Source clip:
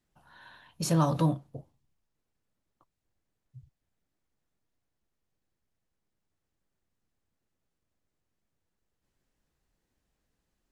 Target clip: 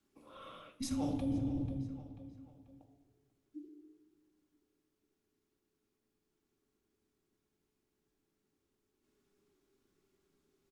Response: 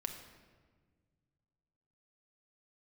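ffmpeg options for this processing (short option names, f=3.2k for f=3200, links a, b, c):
-filter_complex "[0:a]acontrast=32,afreqshift=-430,asplit=2[a][b];[b]adelay=489,lowpass=f=4.3k:p=1,volume=-22.5dB,asplit=2[c][d];[d]adelay=489,lowpass=f=4.3k:p=1,volume=0.42,asplit=2[e][f];[f]adelay=489,lowpass=f=4.3k:p=1,volume=0.42[g];[a][c][e][g]amix=inputs=4:normalize=0[h];[1:a]atrim=start_sample=2205,asetrate=61740,aresample=44100[i];[h][i]afir=irnorm=-1:irlink=0,areverse,acompressor=threshold=-32dB:ratio=10,areverse"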